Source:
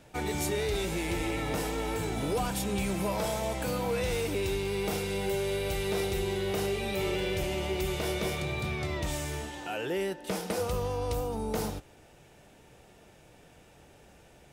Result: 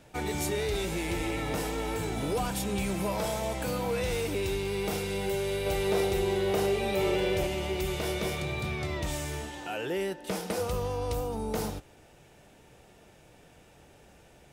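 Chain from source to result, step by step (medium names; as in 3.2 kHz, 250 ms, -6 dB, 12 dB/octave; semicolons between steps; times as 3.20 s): 5.66–7.47 s: peaking EQ 620 Hz +5.5 dB 2.1 oct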